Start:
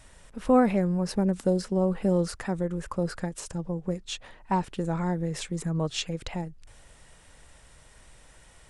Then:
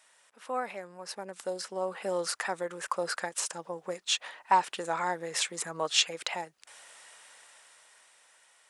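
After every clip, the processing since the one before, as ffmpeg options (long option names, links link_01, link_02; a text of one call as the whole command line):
ffmpeg -i in.wav -af "highpass=820,dynaudnorm=framelen=280:gausssize=13:maxgain=12.5dB,volume=-5dB" out.wav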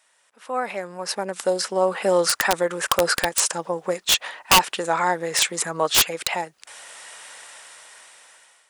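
ffmpeg -i in.wav -af "dynaudnorm=framelen=260:gausssize=5:maxgain=13dB,aeval=exprs='(mod(2.51*val(0)+1,2)-1)/2.51':channel_layout=same" out.wav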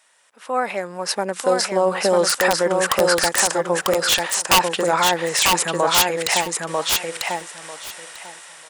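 ffmpeg -i in.wav -filter_complex "[0:a]alimiter=limit=-12.5dB:level=0:latency=1:release=15,asplit=2[link_01][link_02];[link_02]aecho=0:1:945|1890|2835:0.708|0.12|0.0205[link_03];[link_01][link_03]amix=inputs=2:normalize=0,volume=4dB" out.wav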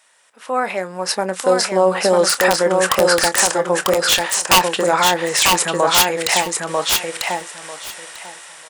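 ffmpeg -i in.wav -filter_complex "[0:a]asplit=2[link_01][link_02];[link_02]adelay=27,volume=-13dB[link_03];[link_01][link_03]amix=inputs=2:normalize=0,volume=2.5dB" out.wav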